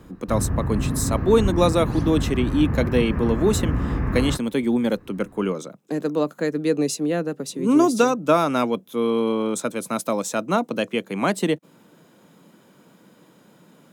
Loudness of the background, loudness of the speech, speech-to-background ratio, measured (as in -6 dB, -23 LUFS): -26.0 LUFS, -23.0 LUFS, 3.0 dB